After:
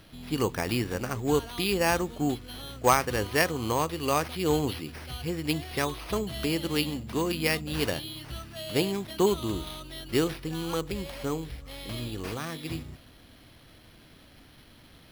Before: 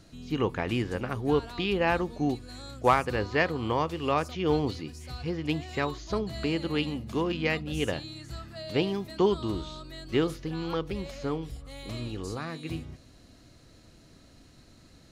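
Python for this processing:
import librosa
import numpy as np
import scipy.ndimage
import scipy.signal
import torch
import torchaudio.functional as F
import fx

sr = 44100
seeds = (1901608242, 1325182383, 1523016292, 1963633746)

y = fx.high_shelf(x, sr, hz=4300.0, db=10.0)
y = np.repeat(y[::6], 6)[:len(y)]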